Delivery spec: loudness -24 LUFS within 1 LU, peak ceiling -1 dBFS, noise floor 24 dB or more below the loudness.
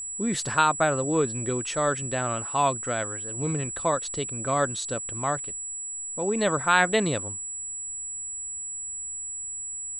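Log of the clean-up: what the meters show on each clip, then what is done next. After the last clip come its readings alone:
steady tone 7800 Hz; tone level -32 dBFS; loudness -26.5 LUFS; peak -6.0 dBFS; loudness target -24.0 LUFS
-> notch 7800 Hz, Q 30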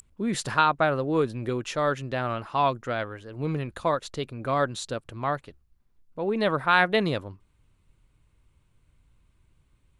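steady tone none; loudness -27.0 LUFS; peak -6.0 dBFS; loudness target -24.0 LUFS
-> gain +3 dB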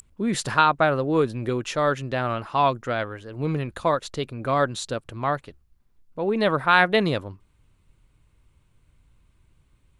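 loudness -24.0 LUFS; peak -3.0 dBFS; noise floor -63 dBFS

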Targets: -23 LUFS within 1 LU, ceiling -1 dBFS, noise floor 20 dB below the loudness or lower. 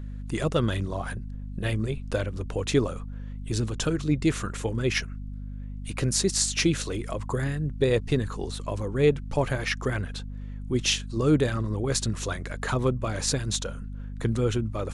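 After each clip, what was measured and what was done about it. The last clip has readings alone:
hum 50 Hz; harmonics up to 250 Hz; hum level -33 dBFS; loudness -27.5 LUFS; peak -7.5 dBFS; loudness target -23.0 LUFS
-> notches 50/100/150/200/250 Hz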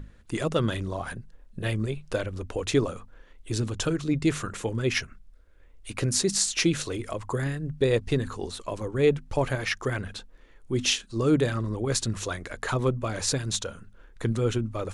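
hum none; loudness -28.0 LUFS; peak -8.0 dBFS; loudness target -23.0 LUFS
-> gain +5 dB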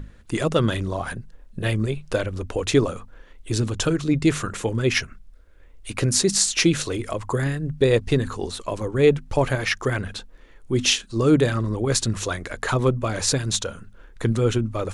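loudness -23.0 LUFS; peak -3.0 dBFS; noise floor -48 dBFS

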